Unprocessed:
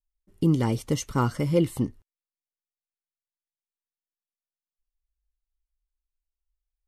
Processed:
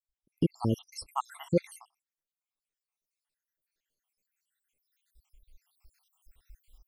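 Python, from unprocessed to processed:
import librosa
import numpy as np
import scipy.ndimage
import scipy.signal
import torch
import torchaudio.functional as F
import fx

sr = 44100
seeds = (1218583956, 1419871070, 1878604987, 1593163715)

y = fx.spec_dropout(x, sr, seeds[0], share_pct=79)
y = fx.recorder_agc(y, sr, target_db=-18.0, rise_db_per_s=7.0, max_gain_db=30)
y = y * 10.0 ** (-1.0 / 20.0)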